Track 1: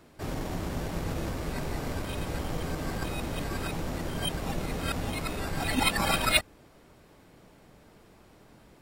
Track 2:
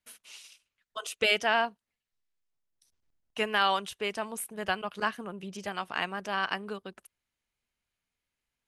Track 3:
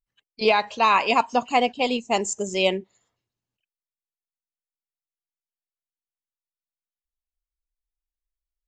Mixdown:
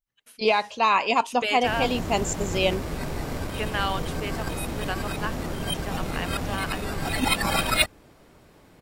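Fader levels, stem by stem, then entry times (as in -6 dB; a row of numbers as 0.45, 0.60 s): +2.5, -2.0, -2.0 dB; 1.45, 0.20, 0.00 s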